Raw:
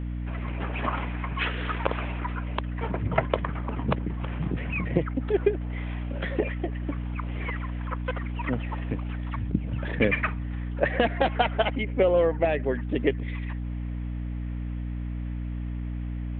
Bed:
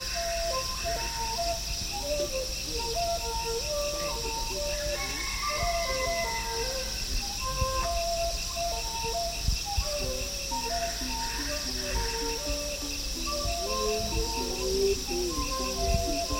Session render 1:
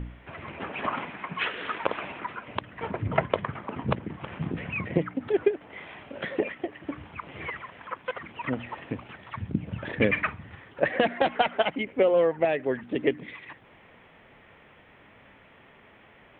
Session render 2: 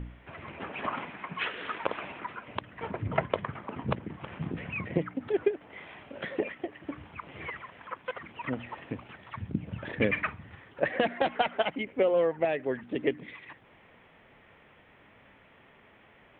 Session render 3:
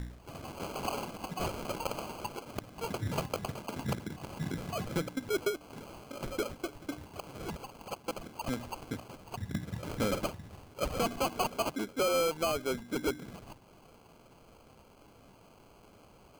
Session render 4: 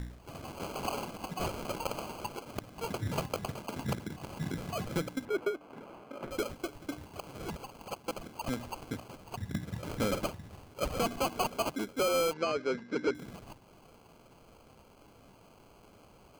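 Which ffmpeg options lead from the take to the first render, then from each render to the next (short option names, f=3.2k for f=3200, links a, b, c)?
-af "bandreject=f=60:t=h:w=4,bandreject=f=120:t=h:w=4,bandreject=f=180:t=h:w=4,bandreject=f=240:t=h:w=4,bandreject=f=300:t=h:w=4"
-af "volume=-3.5dB"
-af "acrusher=samples=24:mix=1:aa=0.000001,asoftclip=type=tanh:threshold=-24.5dB"
-filter_complex "[0:a]asettb=1/sr,asplit=3[a][b][c];[a]atrim=end=5.254[d];[b]atrim=start=5.25:end=6.31,asetpts=PTS-STARTPTS,afade=t=in:d=0.004:c=qsin,afade=t=out:st=1.056:d=0.004:c=qsin,acrossover=split=170 2600:gain=0.224 1 0.2[e][f][g];[e][f][g]amix=inputs=3:normalize=0[h];[c]atrim=start=6.306[i];[d][h]acrossfade=d=0.004:c1=hsin:c2=qsin[j];[j][i]acrossfade=d=0.004:c1=qsin:c2=hsin,asettb=1/sr,asplit=3[k][l][m];[k]atrim=end=12.334[n];[l]atrim=start=12.33:end=13.15,asetpts=PTS-STARTPTS,afade=t=in:d=0.004:c=qsin,afade=t=out:st=0.816:d=0.004:c=qsin,highpass=150,equalizer=f=460:t=q:w=4:g=5,equalizer=f=740:t=q:w=4:g=-6,equalizer=f=1.8k:t=q:w=4:g=6,equalizer=f=3.4k:t=q:w=4:g=-7,lowpass=f=5.3k:w=0.5412,lowpass=f=5.3k:w=1.3066[o];[m]atrim=start=13.146[p];[n][o]acrossfade=d=0.004:c1=hsin:c2=qsin[q];[q][p]acrossfade=d=0.004:c1=qsin:c2=hsin"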